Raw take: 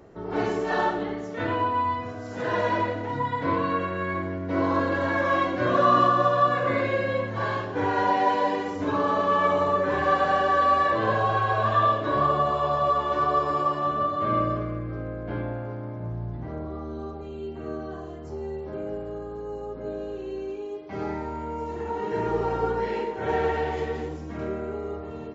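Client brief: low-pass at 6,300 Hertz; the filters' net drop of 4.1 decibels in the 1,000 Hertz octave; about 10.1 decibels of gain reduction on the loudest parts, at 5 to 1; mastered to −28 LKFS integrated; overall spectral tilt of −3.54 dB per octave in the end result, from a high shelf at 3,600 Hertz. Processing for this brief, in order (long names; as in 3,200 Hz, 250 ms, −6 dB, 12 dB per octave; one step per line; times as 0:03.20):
low-pass filter 6,300 Hz
parametric band 1,000 Hz −4.5 dB
high-shelf EQ 3,600 Hz −3.5 dB
downward compressor 5 to 1, threshold −30 dBFS
level +6 dB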